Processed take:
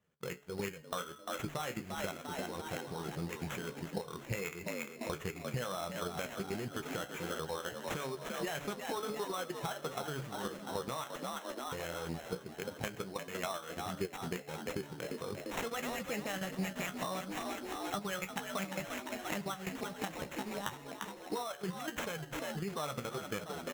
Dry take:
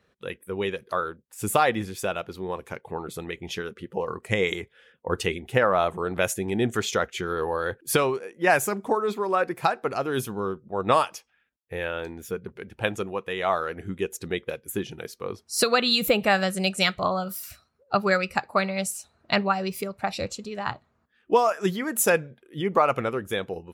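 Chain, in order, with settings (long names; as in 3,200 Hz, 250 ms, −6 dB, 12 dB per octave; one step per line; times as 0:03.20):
mu-law and A-law mismatch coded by A
output level in coarse steps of 14 dB
parametric band 150 Hz +13 dB 0.39 octaves
hum removal 143.2 Hz, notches 15
on a send: echo with shifted repeats 347 ms, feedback 59%, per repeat +60 Hz, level −10 dB
on the sum: dynamic equaliser 1,900 Hz, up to +3 dB, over −41 dBFS, Q 0.74
downward compressor 10 to 1, threshold −37 dBFS, peak gain reduction 15.5 dB
flanger 1.5 Hz, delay 9.4 ms, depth 7.8 ms, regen +47%
sample-rate reduction 4,700 Hz, jitter 0%
level +6 dB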